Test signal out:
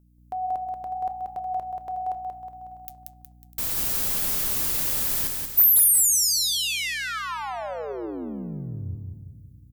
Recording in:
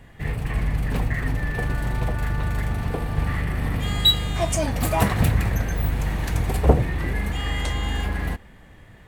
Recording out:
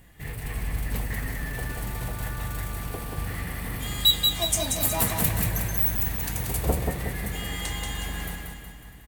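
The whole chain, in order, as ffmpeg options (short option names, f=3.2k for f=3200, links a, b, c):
-filter_complex "[0:a]aemphasis=mode=production:type=75fm,asplit=2[a][b];[b]aecho=0:1:650:0.1[c];[a][c]amix=inputs=2:normalize=0,aeval=exprs='val(0)+0.00355*(sin(2*PI*60*n/s)+sin(2*PI*2*60*n/s)/2+sin(2*PI*3*60*n/s)/3+sin(2*PI*4*60*n/s)/4+sin(2*PI*5*60*n/s)/5)':c=same,flanger=delay=5.2:depth=6.5:regen=82:speed=0.74:shape=triangular,asplit=2[d][e];[e]aecho=0:1:183|366|549|732|915|1098:0.631|0.315|0.158|0.0789|0.0394|0.0197[f];[d][f]amix=inputs=2:normalize=0,asoftclip=type=hard:threshold=-8.5dB,volume=-3.5dB"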